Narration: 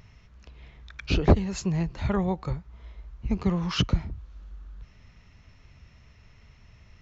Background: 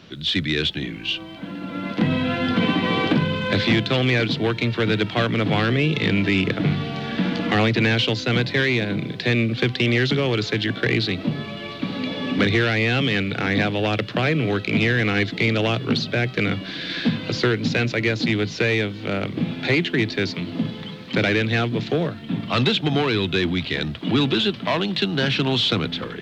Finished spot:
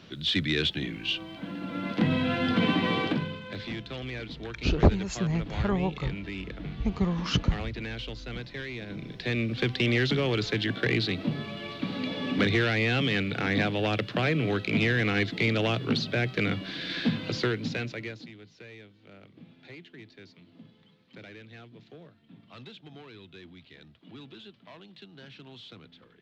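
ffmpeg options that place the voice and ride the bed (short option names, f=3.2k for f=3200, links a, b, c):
-filter_complex "[0:a]adelay=3550,volume=-1.5dB[a];[1:a]volume=7.5dB,afade=t=out:st=2.82:d=0.61:silence=0.223872,afade=t=in:st=8.75:d=1.05:silence=0.251189,afade=t=out:st=17.2:d=1.11:silence=0.0841395[b];[a][b]amix=inputs=2:normalize=0"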